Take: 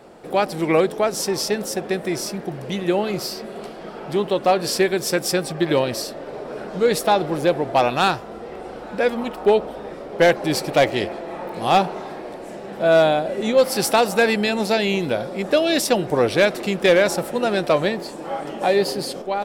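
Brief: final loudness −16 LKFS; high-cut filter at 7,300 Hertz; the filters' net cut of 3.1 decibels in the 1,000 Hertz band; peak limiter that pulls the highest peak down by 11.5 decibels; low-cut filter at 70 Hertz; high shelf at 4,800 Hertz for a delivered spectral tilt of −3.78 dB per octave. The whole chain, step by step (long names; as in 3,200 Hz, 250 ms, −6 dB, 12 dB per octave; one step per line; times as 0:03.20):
high-pass filter 70 Hz
low-pass filter 7,300 Hz
parametric band 1,000 Hz −5 dB
high-shelf EQ 4,800 Hz +7 dB
level +11 dB
brickwall limiter −6 dBFS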